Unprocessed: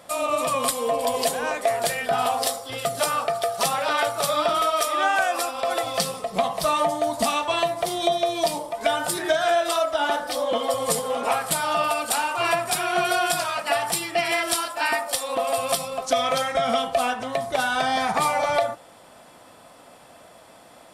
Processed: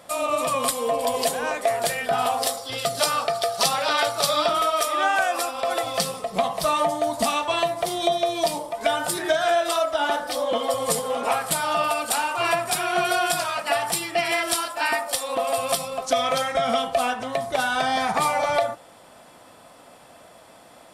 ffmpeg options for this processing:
-filter_complex "[0:a]asettb=1/sr,asplit=3[a][b][c];[a]atrim=end=2.574[d];[b]atrim=start=2.57:end=4.49,asetpts=PTS-STARTPTS,afade=t=in:d=0.004:c=qsin,afade=t=out:st=1.916:d=0.004:c=qsin,equalizer=f=4.6k:t=o:w=0.92:g=7.5[e];[c]atrim=start=4.486[f];[d][e]acrossfade=d=0.004:c1=hsin:c2=qsin[g];[g][f]acrossfade=d=0.004:c1=qsin:c2=hsin"

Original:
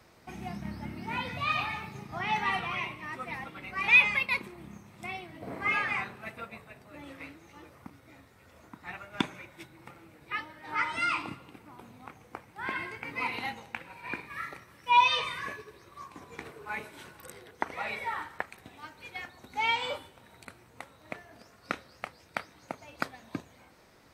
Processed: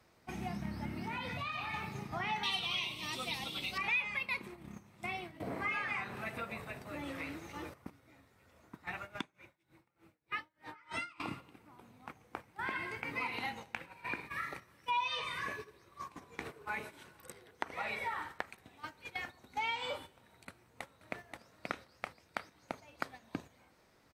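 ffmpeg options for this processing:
-filter_complex "[0:a]asettb=1/sr,asplit=3[a][b][c];[a]atrim=end=0.954[d];[b]atrim=start=0.95:end=1.74,asetpts=PTS-STARTPTS,afade=t=in:d=0.004:c=qsin,afade=t=out:st=0.786:d=0.004:c=qsin,acompressor=threshold=-36dB:ratio=4:attack=3.2:release=140:knee=1:detection=peak[e];[c]atrim=start=1.736[f];[d][e]acrossfade=d=0.004:c1=hsin:c2=qsin[g];[g][f]acrossfade=d=0.004:c1=qsin:c2=hsin,asettb=1/sr,asplit=3[h][i][j];[h]atrim=end=2.434[k];[i]atrim=start=2.43:end=3.78,asetpts=PTS-STARTPTS,afade=t=in:d=0.004:c=qsin,afade=t=out:st=1.346:d=0.004:c=qsin,highshelf=f=2.5k:t=q:w=3:g=12[l];[j]atrim=start=3.776[m];[k][l]acrossfade=d=0.004:c1=hsin:c2=qsin[n];[n][m]acrossfade=d=0.004:c1=qsin:c2=hsin,asettb=1/sr,asplit=3[o][p][q];[o]atrim=end=5.404[r];[p]atrim=start=5.4:end=7.74,asetpts=PTS-STARTPTS,afade=t=in:d=0.004:c=qsin,afade=t=out:st=2.336:d=0.004:c=qsin,acompressor=mode=upward:threshold=-35dB:ratio=2.5:attack=3.2:release=140:knee=2.83:detection=peak[s];[q]atrim=start=7.736[t];[r][s]acrossfade=d=0.004:c1=hsin:c2=qsin[u];[u][t]acrossfade=d=0.004:c1=qsin:c2=hsin,asettb=1/sr,asplit=3[v][w][x];[v]atrim=end=9.154[y];[w]atrim=start=9.15:end=11.2,asetpts=PTS-STARTPTS,afade=t=in:d=0.004:c=qsin,afade=t=out:st=2.046:d=0.004:c=qsin,aeval=exprs='val(0)*pow(10,-27*(0.5-0.5*cos(2*PI*3.3*n/s))/20)':c=same[z];[x]atrim=start=11.196[aa];[y][z]acrossfade=d=0.004:c1=hsin:c2=qsin[ab];[ab][aa]acrossfade=d=0.004:c1=qsin:c2=hsin,asplit=2[ac][ad];[ad]afade=t=in:st=20.48:d=0.01,afade=t=out:st=21.14:d=0.01,aecho=0:1:530|1060|1590:0.668344|0.100252|0.0150377[ae];[ac][ae]amix=inputs=2:normalize=0,agate=range=-9dB:threshold=-45dB:ratio=16:detection=peak,acompressor=threshold=-37dB:ratio=3,volume=1dB"

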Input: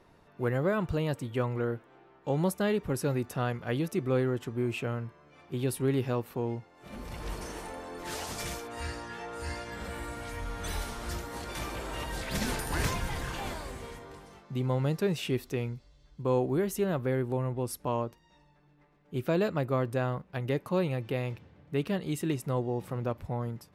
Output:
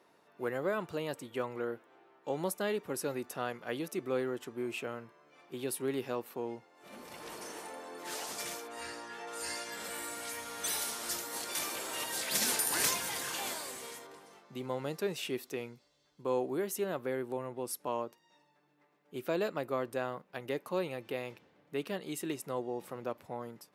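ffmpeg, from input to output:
-filter_complex "[0:a]asettb=1/sr,asplit=3[a][b][c];[a]atrim=end=9.274[d];[b]atrim=start=9.27:end=14.07,asetpts=PTS-STARTPTS,afade=t=in:d=0.004:c=qsin,afade=t=out:st=4.796:d=0.004:c=qsin,highshelf=f=3.3k:g=11[e];[c]atrim=start=14.066[f];[d][e]acrossfade=d=0.004:c1=hsin:c2=qsin[g];[g][f]acrossfade=d=0.004:c1=qsin:c2=hsin,highpass=290,highshelf=f=5.6k:g=5,volume=-3.5dB"

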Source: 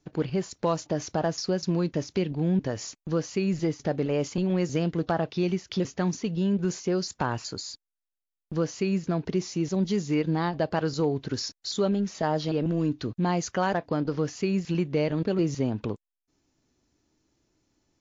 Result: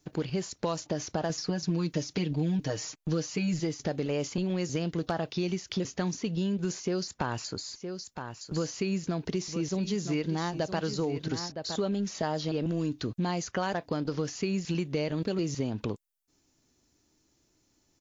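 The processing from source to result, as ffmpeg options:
-filter_complex "[0:a]asettb=1/sr,asplit=3[a][b][c];[a]atrim=end=1.294[d];[b]atrim=start=1.29:end=3.6,asetpts=PTS-STARTPTS,afade=t=in:d=0.004:c=qsin,afade=t=out:st=2.306:d=0.004:c=qsin,aecho=1:1:6.5:0.91,atrim=end_sample=101871[e];[c]atrim=start=3.596[f];[d][e]acrossfade=d=0.004:c1=hsin:c2=qsin[g];[g][f]acrossfade=d=0.004:c1=qsin:c2=hsin,asplit=3[h][i][j];[h]afade=t=out:st=7.71:d=0.02[k];[i]aecho=1:1:964:0.266,afade=t=in:st=7.71:d=0.02,afade=t=out:st=11.78:d=0.02[l];[j]afade=t=in:st=11.78:d=0.02[m];[k][l][m]amix=inputs=3:normalize=0,highshelf=f=5.3k:g=10.5,acrossover=split=2700|6400[n][o][p];[n]acompressor=threshold=-27dB:ratio=4[q];[o]acompressor=threshold=-42dB:ratio=4[r];[p]acompressor=threshold=-51dB:ratio=4[s];[q][r][s]amix=inputs=3:normalize=0"

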